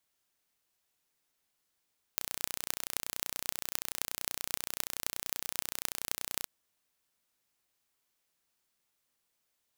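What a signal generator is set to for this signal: pulse train 30.5/s, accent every 8, -2.5 dBFS 4.29 s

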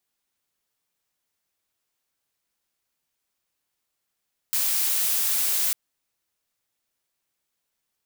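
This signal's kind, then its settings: noise blue, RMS -23.5 dBFS 1.20 s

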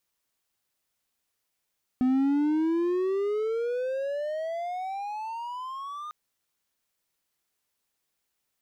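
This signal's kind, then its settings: gliding synth tone triangle, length 4.10 s, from 251 Hz, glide +27.5 st, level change -15 dB, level -18 dB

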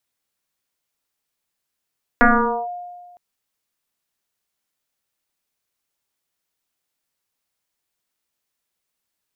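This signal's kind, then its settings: FM tone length 0.96 s, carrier 710 Hz, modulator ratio 0.34, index 4.5, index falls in 0.47 s linear, decay 1.56 s, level -7.5 dB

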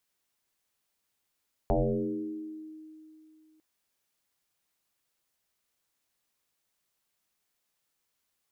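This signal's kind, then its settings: FM tone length 1.90 s, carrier 313 Hz, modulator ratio 0.29, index 5.3, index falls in 1.72 s exponential, decay 2.84 s, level -21 dB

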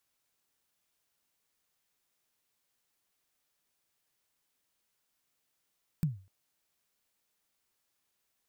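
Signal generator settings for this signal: kick drum length 0.25 s, from 170 Hz, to 95 Hz, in 0.147 s, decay 0.36 s, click on, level -22 dB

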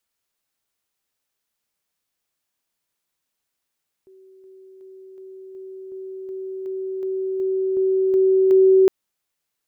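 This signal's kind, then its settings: level ladder 380 Hz -46 dBFS, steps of 3 dB, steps 13, 0.37 s 0.00 s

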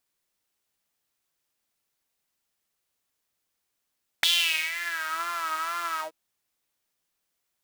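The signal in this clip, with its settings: synth patch with vibrato E4, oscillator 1 saw, sub -11 dB, noise -14 dB, filter highpass, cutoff 440 Hz, Q 6.2, filter envelope 3 oct, filter decay 0.95 s, filter sustain 50%, attack 2.6 ms, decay 0.48 s, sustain -13 dB, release 0.11 s, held 1.77 s, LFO 2.1 Hz, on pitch 77 cents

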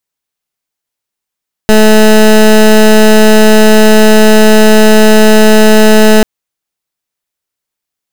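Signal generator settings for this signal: pulse 216 Hz, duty 19% -3 dBFS 4.54 s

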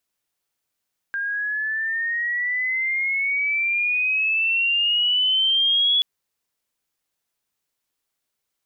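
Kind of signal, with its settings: chirp logarithmic 1600 Hz -> 3400 Hz -23 dBFS -> -15.5 dBFS 4.88 s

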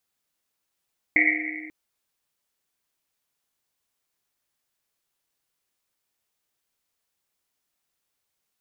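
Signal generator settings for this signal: Risset drum length 0.54 s, pitch 310 Hz, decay 2.42 s, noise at 2100 Hz, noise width 390 Hz, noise 70%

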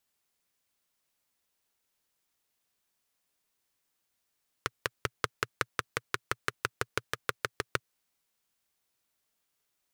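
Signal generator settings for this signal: single-cylinder engine model, changing speed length 3.14 s, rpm 600, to 800, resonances 120/440/1300 Hz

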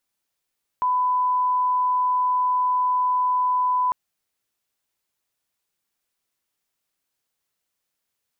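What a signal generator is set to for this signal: line-up tone -18 dBFS 3.10 s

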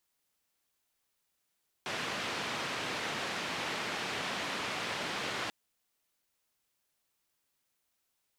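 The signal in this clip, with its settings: noise band 130–2900 Hz, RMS -36.5 dBFS 3.64 s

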